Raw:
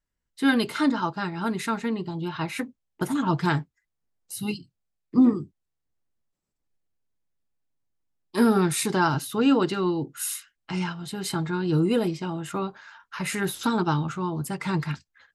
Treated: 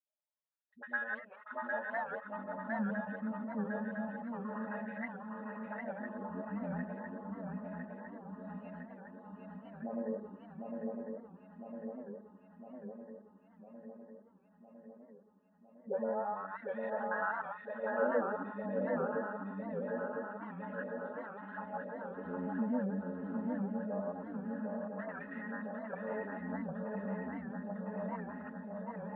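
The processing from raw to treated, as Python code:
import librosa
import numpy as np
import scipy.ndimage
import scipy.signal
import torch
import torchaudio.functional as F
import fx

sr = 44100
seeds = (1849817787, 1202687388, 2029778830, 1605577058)

y = fx.local_reverse(x, sr, ms=56.0)
y = scipy.signal.sosfilt(scipy.signal.butter(2, 160.0, 'highpass', fs=sr, output='sos'), y)
y = fx.stretch_grains(y, sr, factor=1.9, grain_ms=20.0)
y = fx.formant_cascade(y, sr, vowel='e')
y = fx.fixed_phaser(y, sr, hz=940.0, stages=4)
y = fx.dispersion(y, sr, late='highs', ms=87.0, hz=380.0)
y = fx.wah_lfo(y, sr, hz=0.25, low_hz=210.0, high_hz=1600.0, q=2.7)
y = fx.echo_swing(y, sr, ms=1006, ratio=3, feedback_pct=66, wet_db=-4)
y = fx.record_warp(y, sr, rpm=78.0, depth_cents=160.0)
y = y * 10.0 ** (16.5 / 20.0)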